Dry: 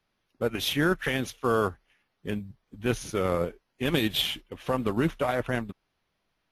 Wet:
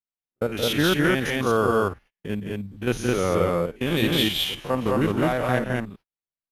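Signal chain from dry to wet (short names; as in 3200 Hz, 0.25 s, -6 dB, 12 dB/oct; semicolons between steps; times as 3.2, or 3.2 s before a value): stepped spectrum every 50 ms; loudspeakers at several distances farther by 59 m -7 dB, 73 m -1 dB; gate -49 dBFS, range -33 dB; gain +3.5 dB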